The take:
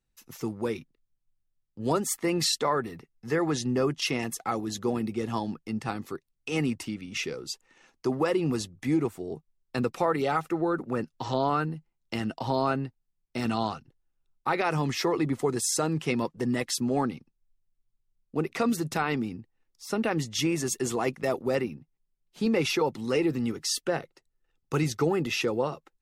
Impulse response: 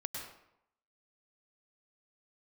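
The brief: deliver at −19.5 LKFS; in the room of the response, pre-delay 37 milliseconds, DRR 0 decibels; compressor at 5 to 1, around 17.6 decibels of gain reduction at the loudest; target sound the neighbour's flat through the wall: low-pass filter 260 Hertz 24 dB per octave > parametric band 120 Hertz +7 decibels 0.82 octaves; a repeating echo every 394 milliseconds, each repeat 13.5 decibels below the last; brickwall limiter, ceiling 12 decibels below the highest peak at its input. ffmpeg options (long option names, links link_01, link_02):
-filter_complex "[0:a]acompressor=threshold=-42dB:ratio=5,alimiter=level_in=12.5dB:limit=-24dB:level=0:latency=1,volume=-12.5dB,aecho=1:1:394|788:0.211|0.0444,asplit=2[link_01][link_02];[1:a]atrim=start_sample=2205,adelay=37[link_03];[link_02][link_03]afir=irnorm=-1:irlink=0,volume=-0.5dB[link_04];[link_01][link_04]amix=inputs=2:normalize=0,lowpass=frequency=260:width=0.5412,lowpass=frequency=260:width=1.3066,equalizer=frequency=120:width_type=o:width=0.82:gain=7,volume=26.5dB"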